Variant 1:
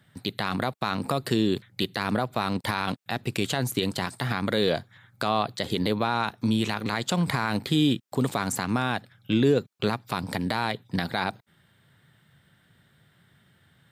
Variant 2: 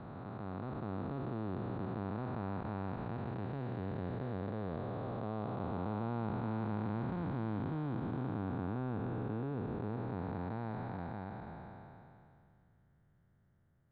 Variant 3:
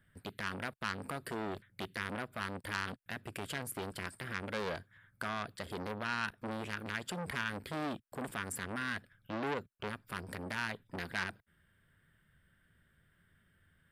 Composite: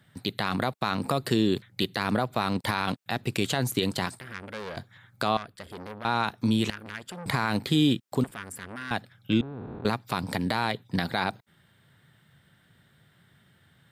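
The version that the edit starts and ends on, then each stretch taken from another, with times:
1
0:04.19–0:04.77: punch in from 3
0:05.37–0:06.05: punch in from 3
0:06.70–0:07.26: punch in from 3
0:08.24–0:08.91: punch in from 3
0:09.41–0:09.85: punch in from 2

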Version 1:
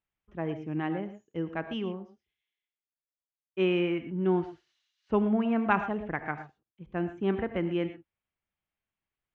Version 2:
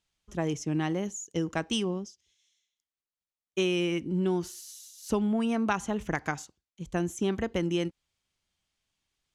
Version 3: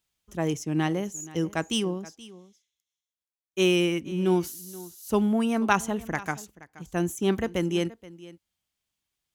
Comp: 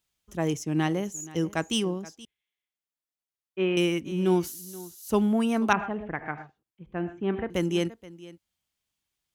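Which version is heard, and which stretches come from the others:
3
0:02.25–0:03.77: punch in from 1
0:05.73–0:07.50: punch in from 1
not used: 2

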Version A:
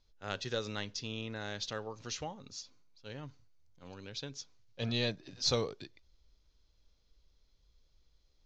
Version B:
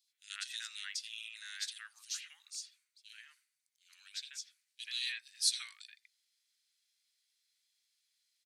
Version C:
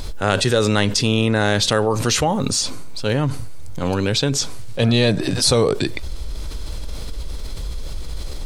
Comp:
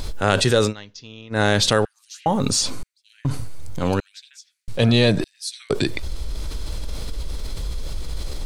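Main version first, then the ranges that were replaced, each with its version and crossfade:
C
0:00.69–0:01.35: punch in from A, crossfade 0.10 s
0:01.85–0:02.26: punch in from B
0:02.83–0:03.25: punch in from B
0:04.00–0:04.68: punch in from B
0:05.24–0:05.70: punch in from B

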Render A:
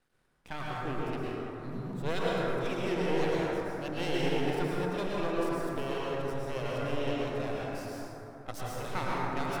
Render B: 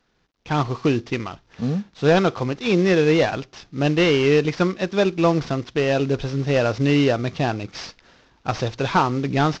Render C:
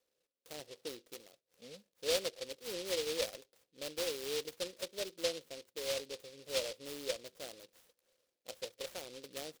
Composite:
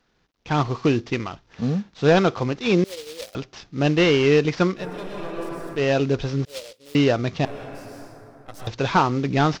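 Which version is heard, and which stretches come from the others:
B
0:02.84–0:03.35: punch in from C
0:04.81–0:05.78: punch in from A, crossfade 0.10 s
0:06.45–0:06.95: punch in from C
0:07.45–0:08.67: punch in from A

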